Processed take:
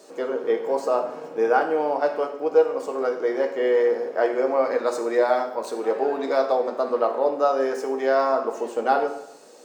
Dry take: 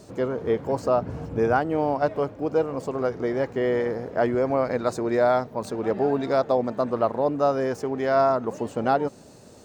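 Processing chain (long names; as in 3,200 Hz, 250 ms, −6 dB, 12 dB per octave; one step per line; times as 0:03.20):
high-pass filter 320 Hz 24 dB per octave
convolution reverb RT60 0.80 s, pre-delay 3 ms, DRR 2.5 dB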